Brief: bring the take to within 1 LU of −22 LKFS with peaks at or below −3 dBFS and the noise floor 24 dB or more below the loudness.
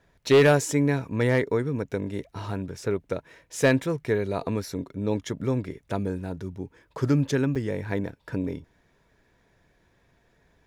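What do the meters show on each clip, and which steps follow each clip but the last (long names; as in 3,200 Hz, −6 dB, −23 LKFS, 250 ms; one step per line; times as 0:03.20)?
share of clipped samples 0.3%; peaks flattened at −12.0 dBFS; number of dropouts 1; longest dropout 6.6 ms; integrated loudness −26.5 LKFS; sample peak −12.0 dBFS; target loudness −22.0 LKFS
→ clipped peaks rebuilt −12 dBFS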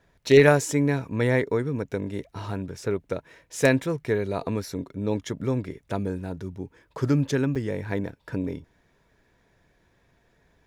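share of clipped samples 0.0%; number of dropouts 1; longest dropout 6.6 ms
→ repair the gap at 0:07.55, 6.6 ms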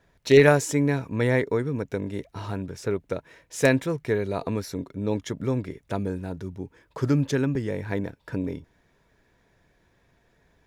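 number of dropouts 0; integrated loudness −25.5 LKFS; sample peak −4.0 dBFS; target loudness −22.0 LKFS
→ level +3.5 dB
brickwall limiter −3 dBFS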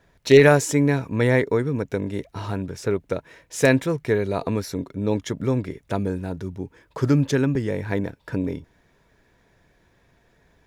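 integrated loudness −22.5 LKFS; sample peak −3.0 dBFS; background noise floor −62 dBFS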